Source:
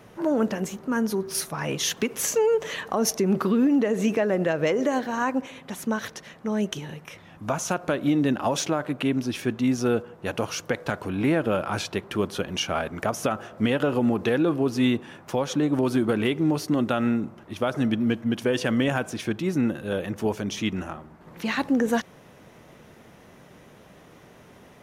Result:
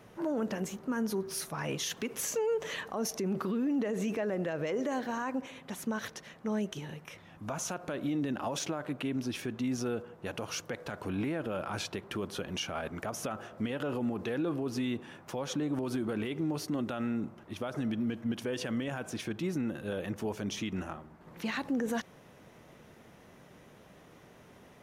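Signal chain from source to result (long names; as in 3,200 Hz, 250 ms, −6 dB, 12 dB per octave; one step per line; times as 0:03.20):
brickwall limiter −19.5 dBFS, peak gain reduction 8.5 dB
level −5.5 dB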